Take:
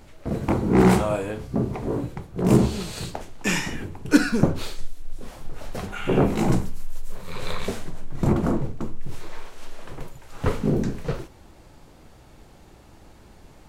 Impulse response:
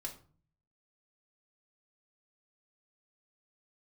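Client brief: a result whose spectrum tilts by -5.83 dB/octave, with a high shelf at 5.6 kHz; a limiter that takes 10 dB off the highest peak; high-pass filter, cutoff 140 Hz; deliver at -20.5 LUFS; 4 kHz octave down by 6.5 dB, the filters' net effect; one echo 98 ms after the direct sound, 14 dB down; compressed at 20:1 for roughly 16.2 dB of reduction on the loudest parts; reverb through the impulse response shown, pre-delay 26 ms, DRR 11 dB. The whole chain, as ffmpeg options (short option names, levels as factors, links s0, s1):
-filter_complex "[0:a]highpass=140,equalizer=f=4000:t=o:g=-7.5,highshelf=f=5600:g=-3.5,acompressor=threshold=0.0447:ratio=20,alimiter=level_in=1.41:limit=0.0631:level=0:latency=1,volume=0.708,aecho=1:1:98:0.2,asplit=2[s0][s1];[1:a]atrim=start_sample=2205,adelay=26[s2];[s1][s2]afir=irnorm=-1:irlink=0,volume=0.355[s3];[s0][s3]amix=inputs=2:normalize=0,volume=7.5"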